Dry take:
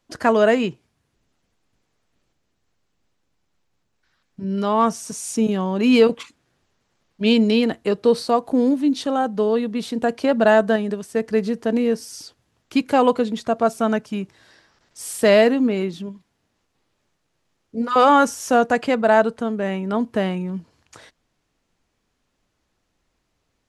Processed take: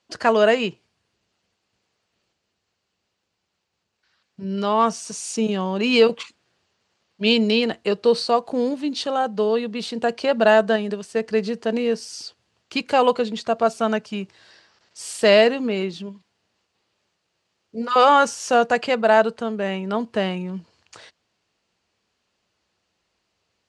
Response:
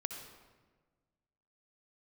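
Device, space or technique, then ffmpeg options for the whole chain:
car door speaker: -af "highpass=99,equalizer=f=140:t=q:w=4:g=-8,equalizer=f=270:t=q:w=4:g=-9,equalizer=f=2.8k:t=q:w=4:g=5,equalizer=f=4.5k:t=q:w=4:g=6,lowpass=f=8.9k:w=0.5412,lowpass=f=8.9k:w=1.3066"

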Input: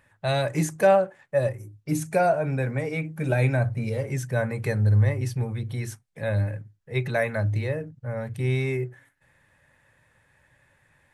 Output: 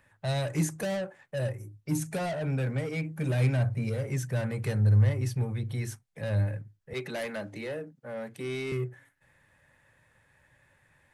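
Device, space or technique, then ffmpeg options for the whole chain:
one-band saturation: -filter_complex "[0:a]asettb=1/sr,asplit=3[a][b][c];[a]atrim=end=6.934[d];[b]atrim=start=6.93:end=8.72,asetpts=PTS-STARTPTS,afade=t=in:d=0.004:c=qsin,afade=t=out:st=1.786:d=0.004:c=qsin,highpass=f=200:w=0.5412,highpass=f=200:w=1.3066[e];[c]atrim=start=8.716[f];[d][e]acrossfade=d=0.004:c1=hsin:c2=qsin[g];[g][f]acrossfade=d=0.004:c1=qsin:c2=hsin,acrossover=split=260|4100[h][i][j];[i]asoftclip=type=tanh:threshold=-30dB[k];[h][k][j]amix=inputs=3:normalize=0,volume=-2dB"

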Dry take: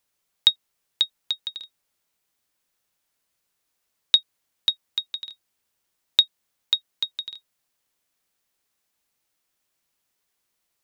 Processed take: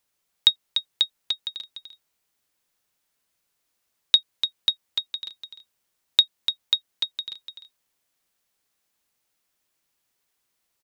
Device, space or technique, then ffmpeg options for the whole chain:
ducked delay: -filter_complex "[0:a]asplit=3[a][b][c];[b]adelay=294,volume=-8.5dB[d];[c]apad=whole_len=490741[e];[d][e]sidechaincompress=threshold=-36dB:ratio=8:attack=16:release=128[f];[a][f]amix=inputs=2:normalize=0"

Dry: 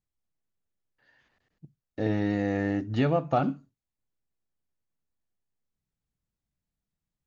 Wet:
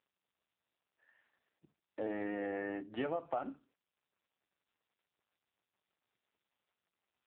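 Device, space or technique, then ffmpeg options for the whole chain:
voicemail: -af "highpass=420,lowpass=2.8k,acompressor=threshold=-30dB:ratio=6,volume=-2dB" -ar 8000 -c:a libopencore_amrnb -b:a 5900

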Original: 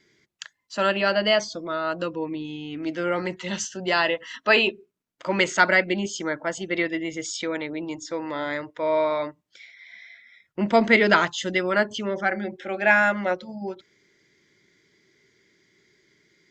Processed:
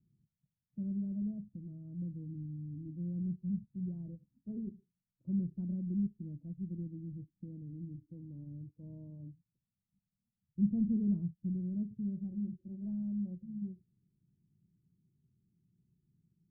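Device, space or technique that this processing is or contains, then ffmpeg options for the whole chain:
the neighbour's flat through the wall: -af "lowpass=f=170:w=0.5412,lowpass=f=170:w=1.3066,equalizer=f=180:t=o:w=0.77:g=4"

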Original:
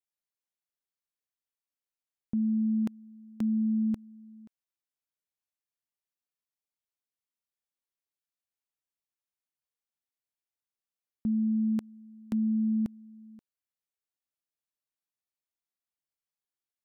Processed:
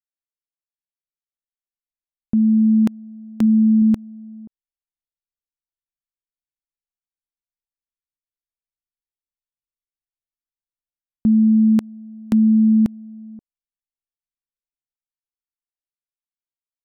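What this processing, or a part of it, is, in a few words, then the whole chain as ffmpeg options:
voice memo with heavy noise removal: -filter_complex "[0:a]asettb=1/sr,asplit=3[a][b][c];[a]atrim=end=3.404[d];[b]atrim=start=3.4:end=3.82,asetpts=PTS-STARTPTS,afade=t=in:d=0.004:c=qsin,afade=t=out:st=0.416:d=0.004:c=qsin,bandreject=f=50:t=h:w=6,bandreject=f=100:t=h:w=6,bandreject=f=150:t=h:w=6,bandreject=f=200:t=h:w=6[e];[c]atrim=start=3.816[f];[d][e]acrossfade=d=0.004:c1=hsin:c2=qsin[g];[g][f]acrossfade=d=0.004:c1=qsin:c2=hsin,anlmdn=0.00251,dynaudnorm=f=120:g=31:m=11.5dB,volume=2dB"

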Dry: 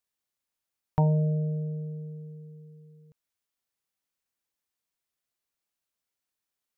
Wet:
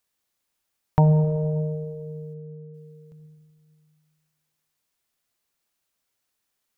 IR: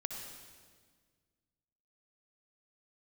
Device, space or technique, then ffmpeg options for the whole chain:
ducked reverb: -filter_complex "[0:a]asplit=3[a][b][c];[1:a]atrim=start_sample=2205[d];[b][d]afir=irnorm=-1:irlink=0[e];[c]apad=whole_len=298889[f];[e][f]sidechaincompress=threshold=-26dB:ratio=8:attack=16:release=231,volume=-1dB[g];[a][g]amix=inputs=2:normalize=0,asplit=3[h][i][j];[h]afade=t=out:st=2.33:d=0.02[k];[i]lowpass=1.3k,afade=t=in:st=2.33:d=0.02,afade=t=out:st=2.73:d=0.02[l];[j]afade=t=in:st=2.73:d=0.02[m];[k][l][m]amix=inputs=3:normalize=0,volume=3.5dB"

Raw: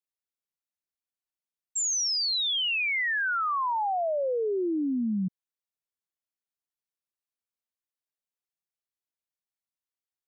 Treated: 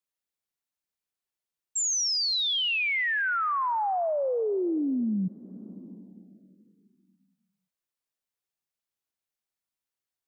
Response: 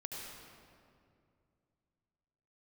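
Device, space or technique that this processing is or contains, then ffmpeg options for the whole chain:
ducked reverb: -filter_complex "[0:a]asplit=3[a][b][c];[1:a]atrim=start_sample=2205[d];[b][d]afir=irnorm=-1:irlink=0[e];[c]apad=whole_len=453321[f];[e][f]sidechaincompress=threshold=-40dB:ratio=8:attack=16:release=523,volume=-5.5dB[g];[a][g]amix=inputs=2:normalize=0"

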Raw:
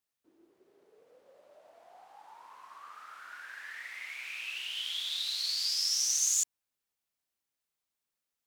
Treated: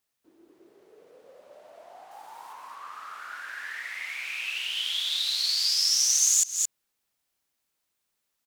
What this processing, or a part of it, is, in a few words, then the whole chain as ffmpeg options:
ducked delay: -filter_complex "[0:a]asettb=1/sr,asplit=3[a][b][c];[a]atrim=end=2.114[d];[b]atrim=start=2.11:end=2.53,asetpts=PTS-STARTPTS,afade=t=in:d=0.004:c=qsin,afade=t=out:st=0.416:d=0.004:c=qsin,highshelf=f=6.9k:g=11.5[e];[c]atrim=start=2.526[f];[d][e]acrossfade=d=0.004:c1=hsin:c2=qsin[g];[g][f]acrossfade=d=0.004:c1=qsin:c2=hsin,asplit=3[h][i][j];[i]adelay=220,volume=-3dB[k];[j]apad=whole_len=383048[l];[k][l]sidechaincompress=threshold=-45dB:ratio=8:attack=9.4:release=139[m];[h][m]amix=inputs=2:normalize=0,volume=6.5dB"

